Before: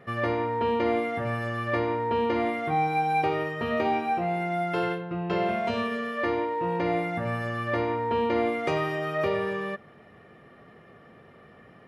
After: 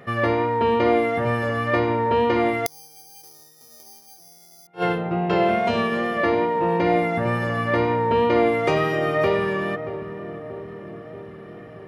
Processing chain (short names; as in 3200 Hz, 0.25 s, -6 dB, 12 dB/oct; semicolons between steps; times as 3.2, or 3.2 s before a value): darkening echo 0.631 s, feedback 70%, low-pass 1000 Hz, level -10.5 dB; wow and flutter 20 cents; 2.66–4.67 careless resampling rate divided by 8×, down filtered, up zero stuff; flipped gate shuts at -9 dBFS, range -37 dB; gain +6 dB